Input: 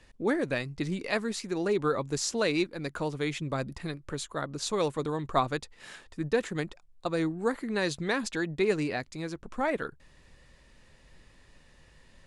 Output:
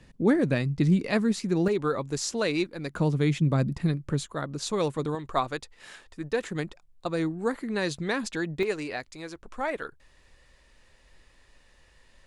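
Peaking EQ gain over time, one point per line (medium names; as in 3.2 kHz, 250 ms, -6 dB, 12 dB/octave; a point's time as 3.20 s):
peaking EQ 160 Hz 1.9 oct
+12.5 dB
from 1.68 s +1.5 dB
from 2.94 s +13 dB
from 4.26 s +4.5 dB
from 5.15 s -4.5 dB
from 6.43 s +2 dB
from 8.63 s -8.5 dB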